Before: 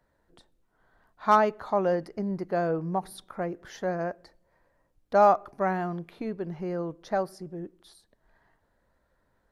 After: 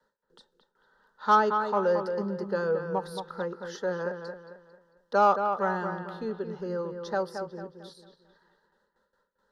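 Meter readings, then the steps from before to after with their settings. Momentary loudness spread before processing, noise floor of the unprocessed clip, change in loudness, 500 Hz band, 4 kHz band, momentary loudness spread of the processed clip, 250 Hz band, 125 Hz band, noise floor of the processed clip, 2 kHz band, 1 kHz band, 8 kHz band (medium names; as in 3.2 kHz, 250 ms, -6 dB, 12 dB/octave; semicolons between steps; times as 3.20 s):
14 LU, -72 dBFS, -0.5 dB, -0.5 dB, +3.5 dB, 16 LU, -3.0 dB, -4.0 dB, -78 dBFS, +2.0 dB, 0.0 dB, no reading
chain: treble shelf 2.7 kHz +12 dB; static phaser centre 460 Hz, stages 8; in parallel at -7.5 dB: saturation -20.5 dBFS, distortion -11 dB; on the sum: gate with hold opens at -58 dBFS; three-band isolator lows -15 dB, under 220 Hz, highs -22 dB, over 4.8 kHz; band-stop 1.1 kHz, Q 6.6; on a send: feedback echo behind a low-pass 223 ms, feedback 38%, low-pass 3.1 kHz, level -7 dB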